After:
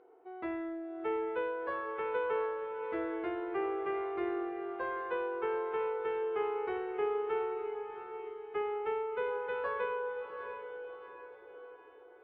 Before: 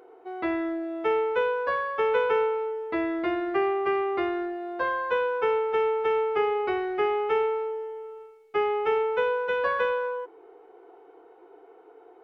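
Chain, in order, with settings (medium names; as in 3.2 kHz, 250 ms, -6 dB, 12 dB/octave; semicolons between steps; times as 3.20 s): distance through air 270 m; on a send: echo that smears into a reverb 736 ms, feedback 44%, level -8 dB; on the sum: trim -9 dB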